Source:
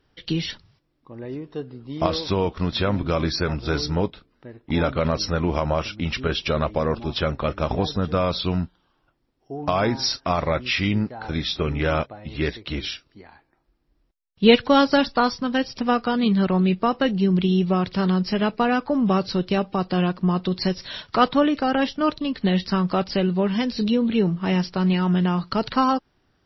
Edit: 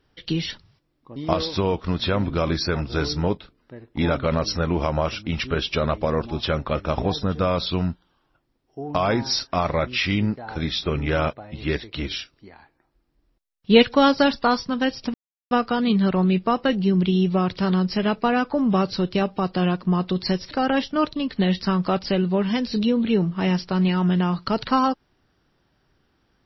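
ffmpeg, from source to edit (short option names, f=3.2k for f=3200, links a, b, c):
-filter_complex "[0:a]asplit=4[a][b][c][d];[a]atrim=end=1.162[e];[b]atrim=start=1.888:end=15.87,asetpts=PTS-STARTPTS,afade=t=out:st=13.978:d=0.004:c=hsin,apad=pad_dur=0.37[f];[c]atrim=start=15.87:end=20.872,asetpts=PTS-STARTPTS,afade=t=in:d=0.004:c=hsin[g];[d]atrim=start=21.558[h];[f][g]concat=n=2:v=0:a=1[i];[e][i]acrossfade=d=0.004:c1=hsin:c2=hsin[j];[j][h]acrossfade=d=0.004:c1=hsin:c2=hsin"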